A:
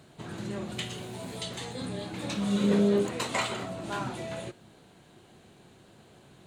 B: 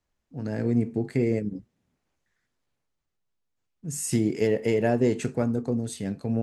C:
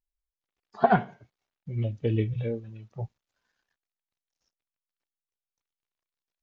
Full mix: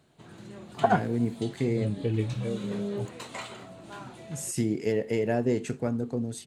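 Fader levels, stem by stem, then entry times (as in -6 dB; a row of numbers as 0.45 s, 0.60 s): -9.0 dB, -3.5 dB, -2.0 dB; 0.00 s, 0.45 s, 0.00 s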